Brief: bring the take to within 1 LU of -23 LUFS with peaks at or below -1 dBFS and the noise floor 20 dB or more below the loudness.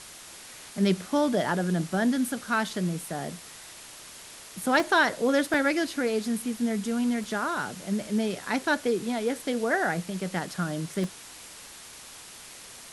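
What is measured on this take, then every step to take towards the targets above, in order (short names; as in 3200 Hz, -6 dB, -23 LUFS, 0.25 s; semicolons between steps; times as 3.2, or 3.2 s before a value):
dropouts 5; longest dropout 1.8 ms; noise floor -46 dBFS; noise floor target -48 dBFS; loudness -27.5 LUFS; peak -10.0 dBFS; loudness target -23.0 LUFS
-> interpolate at 4.8/5.54/7.24/10.47/11.04, 1.8 ms; noise print and reduce 6 dB; gain +4.5 dB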